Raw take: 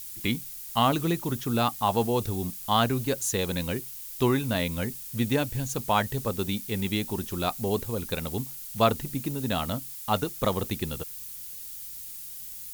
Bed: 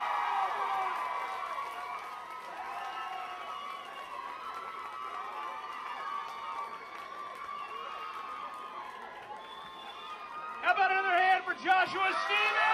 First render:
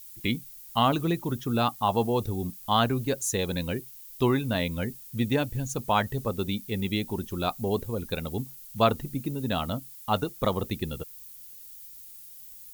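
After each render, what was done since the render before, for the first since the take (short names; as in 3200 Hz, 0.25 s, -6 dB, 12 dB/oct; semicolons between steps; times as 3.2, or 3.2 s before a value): denoiser 9 dB, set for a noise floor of -40 dBFS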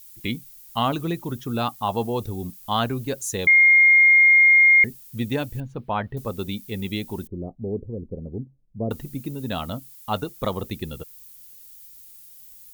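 3.47–4.84 bleep 2130 Hz -10.5 dBFS; 5.6–6.17 air absorption 410 m; 7.27–8.91 inverse Chebyshev low-pass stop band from 1700 Hz, stop band 60 dB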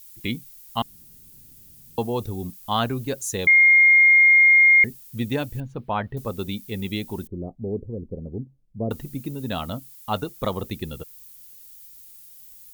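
0.82–1.98 room tone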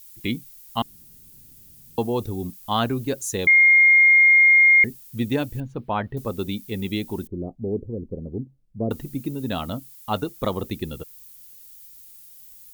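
dynamic EQ 310 Hz, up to +4 dB, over -40 dBFS, Q 1.6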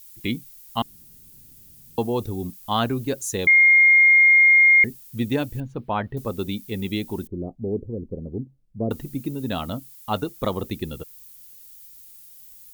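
nothing audible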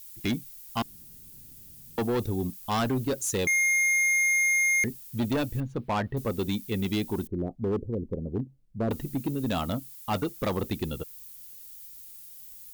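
hard clip -23 dBFS, distortion -5 dB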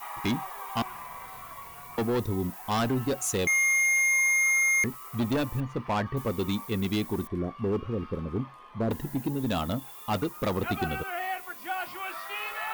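add bed -7 dB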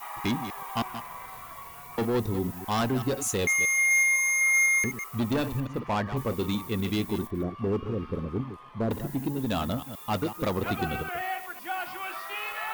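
reverse delay 0.126 s, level -10.5 dB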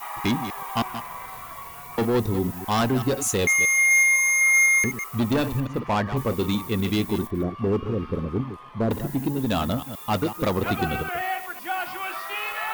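gain +4.5 dB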